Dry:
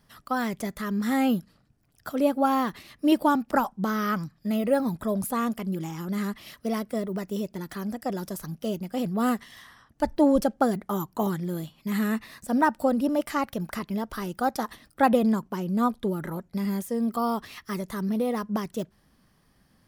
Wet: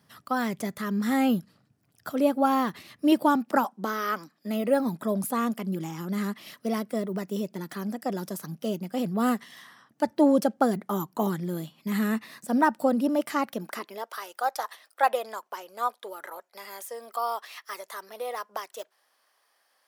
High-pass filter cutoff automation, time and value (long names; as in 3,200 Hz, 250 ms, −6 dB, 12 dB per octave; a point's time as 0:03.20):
high-pass filter 24 dB per octave
0:03.09 96 Hz
0:04.03 320 Hz
0:05.13 150 Hz
0:13.41 150 Hz
0:14.14 560 Hz